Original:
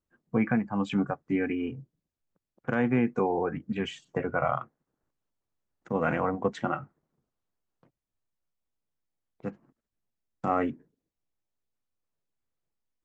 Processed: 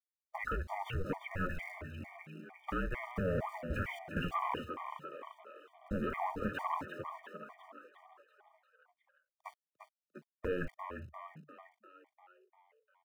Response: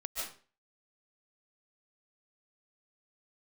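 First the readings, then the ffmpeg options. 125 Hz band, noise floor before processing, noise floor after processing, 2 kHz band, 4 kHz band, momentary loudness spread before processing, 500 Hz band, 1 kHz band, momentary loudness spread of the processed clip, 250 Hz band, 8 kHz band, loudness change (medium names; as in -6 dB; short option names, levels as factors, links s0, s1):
-6.0 dB, under -85 dBFS, under -85 dBFS, -5.0 dB, -6.0 dB, 14 LU, -9.5 dB, -6.0 dB, 19 LU, -13.0 dB, no reading, -10.0 dB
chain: -filter_complex "[0:a]equalizer=f=71:t=o:w=0.43:g=13,asoftclip=type=tanh:threshold=0.0668,highpass=f=170:t=q:w=0.5412,highpass=f=170:t=q:w=1.307,lowpass=f=3100:t=q:w=0.5176,lowpass=f=3100:t=q:w=0.7071,lowpass=f=3100:t=q:w=1.932,afreqshift=-280,lowshelf=f=270:g=-11.5,aeval=exprs='val(0)*gte(abs(val(0)),0.00178)':c=same,agate=range=0.126:threshold=0.00355:ratio=16:detection=peak,acompressor=threshold=0.00501:ratio=2,asplit=2[s0][s1];[s1]asplit=7[s2][s3][s4][s5][s6][s7][s8];[s2]adelay=348,afreqshift=72,volume=0.398[s9];[s3]adelay=696,afreqshift=144,volume=0.224[s10];[s4]adelay=1044,afreqshift=216,volume=0.124[s11];[s5]adelay=1392,afreqshift=288,volume=0.07[s12];[s6]adelay=1740,afreqshift=360,volume=0.0394[s13];[s7]adelay=2088,afreqshift=432,volume=0.0219[s14];[s8]adelay=2436,afreqshift=504,volume=0.0123[s15];[s9][s10][s11][s12][s13][s14][s15]amix=inputs=7:normalize=0[s16];[s0][s16]amix=inputs=2:normalize=0,afftfilt=real='re*gt(sin(2*PI*2.2*pts/sr)*(1-2*mod(floor(b*sr/1024/610),2)),0)':imag='im*gt(sin(2*PI*2.2*pts/sr)*(1-2*mod(floor(b*sr/1024/610),2)),0)':win_size=1024:overlap=0.75,volume=3.16"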